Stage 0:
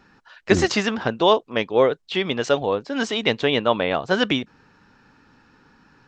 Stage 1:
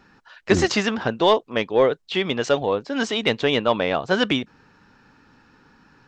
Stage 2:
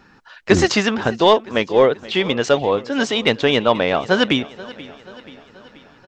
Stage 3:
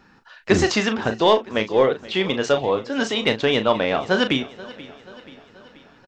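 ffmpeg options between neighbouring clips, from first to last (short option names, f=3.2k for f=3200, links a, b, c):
-af "acontrast=25,volume=-4.5dB"
-af "aecho=1:1:482|964|1446|1928|2410:0.112|0.0628|0.0352|0.0197|0.011,volume=4dB"
-filter_complex "[0:a]asplit=2[a][b];[b]adelay=37,volume=-9.5dB[c];[a][c]amix=inputs=2:normalize=0,volume=-3.5dB"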